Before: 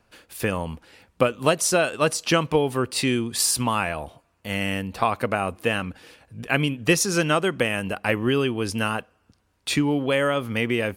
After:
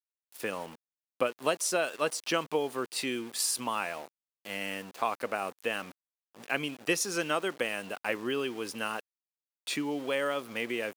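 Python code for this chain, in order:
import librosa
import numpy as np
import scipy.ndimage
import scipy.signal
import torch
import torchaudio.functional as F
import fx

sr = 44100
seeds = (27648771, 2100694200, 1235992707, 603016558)

y = np.where(np.abs(x) >= 10.0 ** (-34.5 / 20.0), x, 0.0)
y = scipy.signal.sosfilt(scipy.signal.butter(2, 290.0, 'highpass', fs=sr, output='sos'), y)
y = y * librosa.db_to_amplitude(-8.0)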